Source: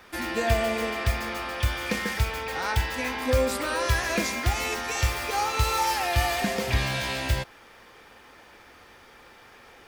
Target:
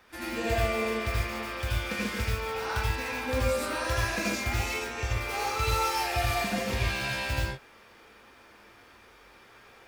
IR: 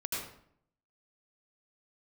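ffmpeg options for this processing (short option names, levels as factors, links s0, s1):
-filter_complex "[0:a]asettb=1/sr,asplit=3[s0][s1][s2];[s0]atrim=end=4.794[s3];[s1]atrim=start=4.79:end=5.21,asetpts=PTS-STARTPTS,afade=t=in:d=0.004:c=qsin,afade=t=out:st=0.416:d=0.004:c=qsin,highshelf=f=4100:g=-11[s4];[s2]atrim=start=5.206[s5];[s3][s4]acrossfade=d=0.004:c1=hsin:c2=qsin[s6];[s6][s5]acrossfade=d=0.004:c1=qsin:c2=hsin[s7];[1:a]atrim=start_sample=2205,atrim=end_sample=6615[s8];[s7][s8]afir=irnorm=-1:irlink=0,volume=0.501"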